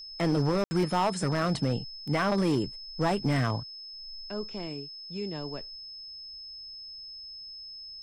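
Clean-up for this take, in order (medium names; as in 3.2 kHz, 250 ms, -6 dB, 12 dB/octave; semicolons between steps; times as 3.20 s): clip repair -20 dBFS; band-stop 5.2 kHz, Q 30; room tone fill 0.64–0.71 s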